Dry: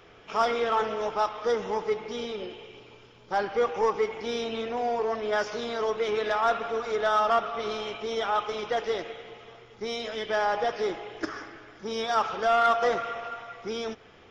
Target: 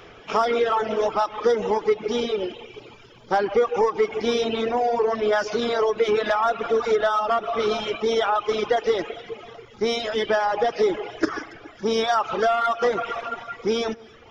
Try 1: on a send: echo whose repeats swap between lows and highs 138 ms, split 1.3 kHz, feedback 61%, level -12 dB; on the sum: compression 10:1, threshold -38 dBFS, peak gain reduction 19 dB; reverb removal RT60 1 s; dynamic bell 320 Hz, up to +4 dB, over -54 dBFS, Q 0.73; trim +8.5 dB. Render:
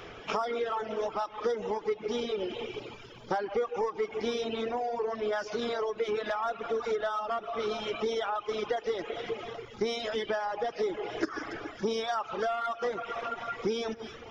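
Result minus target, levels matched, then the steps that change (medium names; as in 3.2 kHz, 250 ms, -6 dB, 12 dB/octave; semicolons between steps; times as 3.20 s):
compression: peak gain reduction +10.5 dB
change: compression 10:1, threshold -26.5 dBFS, peak gain reduction 8.5 dB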